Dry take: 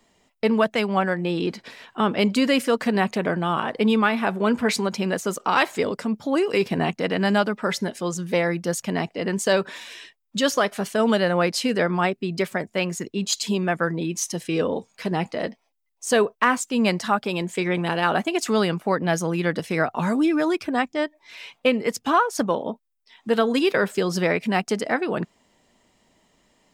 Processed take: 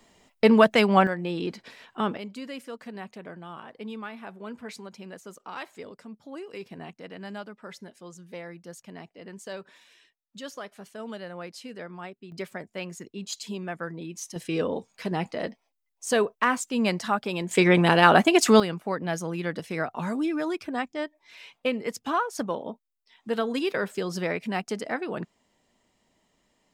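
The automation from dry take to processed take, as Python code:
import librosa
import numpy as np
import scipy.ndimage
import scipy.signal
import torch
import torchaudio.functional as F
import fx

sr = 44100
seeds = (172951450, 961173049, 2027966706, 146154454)

y = fx.gain(x, sr, db=fx.steps((0.0, 3.0), (1.07, -5.5), (2.17, -18.0), (12.32, -11.0), (14.36, -4.0), (17.51, 5.0), (18.6, -7.0)))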